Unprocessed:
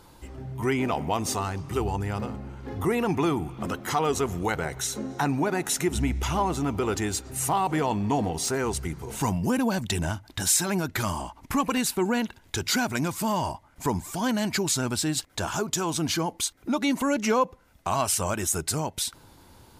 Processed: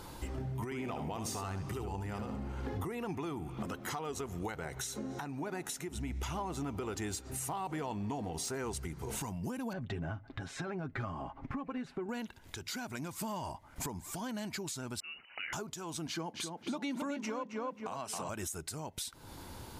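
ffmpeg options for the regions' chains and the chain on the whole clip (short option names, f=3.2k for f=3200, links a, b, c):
-filter_complex "[0:a]asettb=1/sr,asplit=3[a][b][c];[a]atrim=end=0.644[d];[b]atrim=start=0.64:end=2.77,asetpts=PTS-STARTPTS,afade=t=in:d=0.004:c=qsin,afade=t=out:st=2.126:d=0.004:c=qsin,acompressor=threshold=-31dB:ratio=6:attack=3.2:release=140:knee=1:detection=peak,aecho=1:1:73:0.398,atrim=end_sample=93933[e];[c]atrim=start=2.766[f];[d][e]acrossfade=d=0.004:c1=hsin:c2=qsin[g];[g][f]acrossfade=d=0.004:c1=qsin:c2=hsin,asettb=1/sr,asplit=3[h][i][j];[h]atrim=end=9.734[k];[i]atrim=start=9.73:end=12.09,asetpts=PTS-STARTPTS,afade=t=in:d=0.004:c=qsin,afade=t=out:st=2.356:d=0.004:c=qsin,lowpass=1.7k,bandreject=f=940:w=9.1,aecho=1:1:7.4:0.5,atrim=end_sample=104076[l];[j]atrim=start=12.086[m];[k][l]acrossfade=d=0.004:c1=hsin:c2=qsin[n];[n][m]acrossfade=d=0.004:c1=qsin:c2=hsin,asettb=1/sr,asplit=3[o][p][q];[o]atrim=end=15.004[r];[p]atrim=start=15:end=15.53,asetpts=PTS-STARTPTS,afade=t=in:d=0.004:c=qsin,afade=t=out:st=0.526:d=0.004:c=qsin,acompressor=threshold=-41dB:ratio=3:attack=3.2:release=140:knee=1:detection=peak,equalizer=f=730:t=o:w=1.5:g=6.5,lowpass=f=2.6k:t=q:w=0.5098,lowpass=f=2.6k:t=q:w=0.6013,lowpass=f=2.6k:t=q:w=0.9,lowpass=f=2.6k:t=q:w=2.563,afreqshift=-3000[s];[q]atrim=start=15.526[t];[r][s]acrossfade=d=0.004:c1=hsin:c2=qsin[u];[u][t]acrossfade=d=0.004:c1=qsin:c2=hsin,asettb=1/sr,asplit=3[v][w][x];[v]atrim=end=16.074[y];[w]atrim=start=16.07:end=18.29,asetpts=PTS-STARTPTS,afade=t=in:d=0.004:c=qsin,afade=t=out:st=2.216:d=0.004:c=qsin,highpass=f=130:w=0.5412,highpass=f=130:w=1.3066,highshelf=f=9.1k:g=-12,asplit=2[z][aa];[aa]adelay=269,lowpass=f=3k:p=1,volume=-5dB,asplit=2[ab][ac];[ac]adelay=269,lowpass=f=3k:p=1,volume=0.34,asplit=2[ad][ae];[ae]adelay=269,lowpass=f=3k:p=1,volume=0.34,asplit=2[af][ag];[ag]adelay=269,lowpass=f=3k:p=1,volume=0.34[ah];[z][ab][ad][af][ah]amix=inputs=5:normalize=0,atrim=end_sample=97902[ai];[x]atrim=start=18.286[aj];[y][ai]acrossfade=d=0.004:c1=hsin:c2=qsin[ak];[ak][aj]acrossfade=d=0.004:c1=qsin:c2=hsin,acompressor=threshold=-40dB:ratio=6,alimiter=level_in=8.5dB:limit=-24dB:level=0:latency=1:release=368,volume=-8.5dB,volume=4.5dB"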